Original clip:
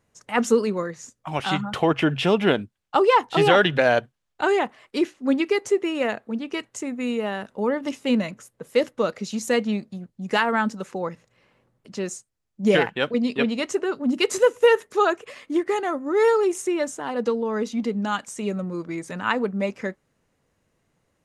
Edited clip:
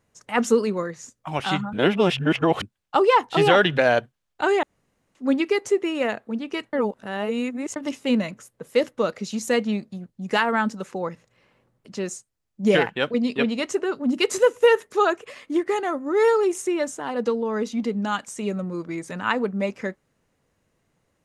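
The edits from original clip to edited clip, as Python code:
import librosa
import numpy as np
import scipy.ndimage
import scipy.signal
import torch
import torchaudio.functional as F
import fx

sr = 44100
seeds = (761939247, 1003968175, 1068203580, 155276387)

y = fx.edit(x, sr, fx.reverse_span(start_s=1.73, length_s=0.89),
    fx.room_tone_fill(start_s=4.63, length_s=0.52),
    fx.reverse_span(start_s=6.73, length_s=1.03), tone=tone)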